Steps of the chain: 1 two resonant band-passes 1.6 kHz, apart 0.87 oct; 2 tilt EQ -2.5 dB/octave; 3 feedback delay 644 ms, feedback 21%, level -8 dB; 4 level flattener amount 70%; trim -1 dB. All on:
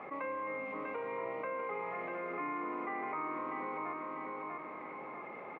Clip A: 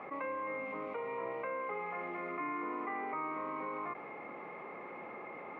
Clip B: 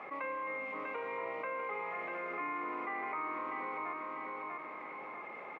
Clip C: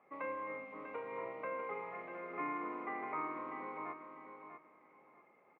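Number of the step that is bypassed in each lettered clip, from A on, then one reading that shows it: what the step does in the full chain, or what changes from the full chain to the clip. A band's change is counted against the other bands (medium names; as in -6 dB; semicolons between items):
3, momentary loudness spread change +1 LU; 2, 2 kHz band +6.0 dB; 4, crest factor change +3.5 dB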